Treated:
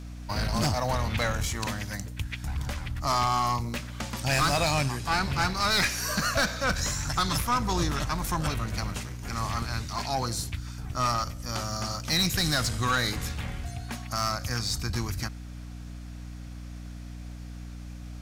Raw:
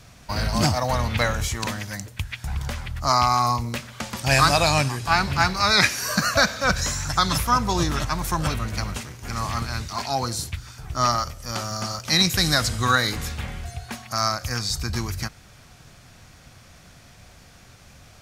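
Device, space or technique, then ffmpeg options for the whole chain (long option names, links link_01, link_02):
valve amplifier with mains hum: -af "aeval=exprs='(tanh(7.08*val(0)+0.3)-tanh(0.3))/7.08':channel_layout=same,aeval=exprs='val(0)+0.0158*(sin(2*PI*60*n/s)+sin(2*PI*2*60*n/s)/2+sin(2*PI*3*60*n/s)/3+sin(2*PI*4*60*n/s)/4+sin(2*PI*5*60*n/s)/5)':channel_layout=same,volume=-2.5dB"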